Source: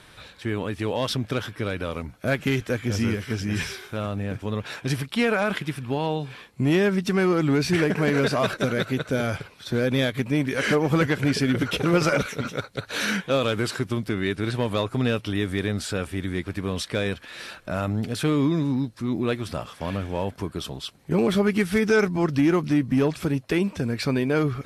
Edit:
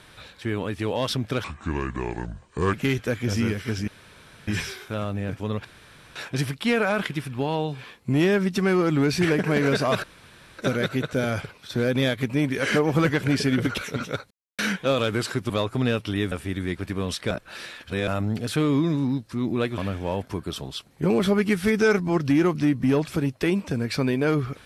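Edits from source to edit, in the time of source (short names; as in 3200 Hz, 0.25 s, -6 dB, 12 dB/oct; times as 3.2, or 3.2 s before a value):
1.44–2.36 speed 71%
3.5 insert room tone 0.60 s
4.67 insert room tone 0.51 s
8.55 insert room tone 0.55 s
11.74–12.22 cut
12.75–13.03 mute
13.94–14.69 cut
15.51–15.99 cut
16.98–17.75 reverse
19.45–19.86 cut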